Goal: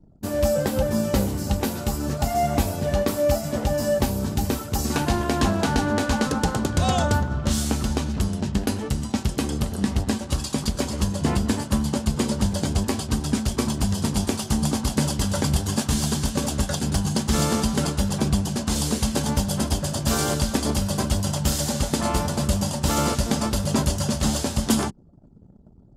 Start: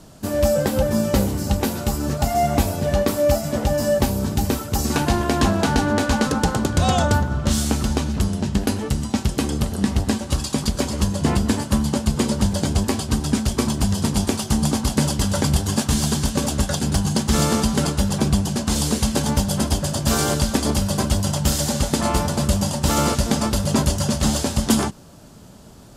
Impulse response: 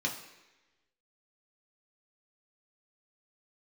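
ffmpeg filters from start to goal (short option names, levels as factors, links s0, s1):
-af "anlmdn=0.398,volume=0.708"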